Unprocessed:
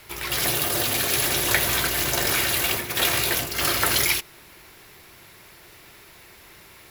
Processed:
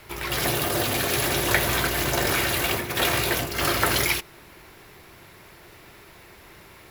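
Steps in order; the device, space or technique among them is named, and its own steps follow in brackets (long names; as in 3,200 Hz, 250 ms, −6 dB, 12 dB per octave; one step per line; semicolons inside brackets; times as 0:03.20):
behind a face mask (high-shelf EQ 2,200 Hz −8 dB)
level +3.5 dB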